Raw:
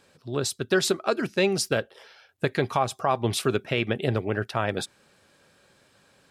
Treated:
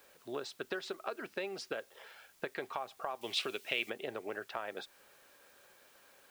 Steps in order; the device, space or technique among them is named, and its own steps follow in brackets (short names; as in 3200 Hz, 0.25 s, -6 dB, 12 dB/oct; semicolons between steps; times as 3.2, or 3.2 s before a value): baby monitor (BPF 430–3200 Hz; compressor, threshold -35 dBFS, peak gain reduction 15 dB; white noise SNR 23 dB); 3.21–3.9 resonant high shelf 2000 Hz +7.5 dB, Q 1.5; gain -1.5 dB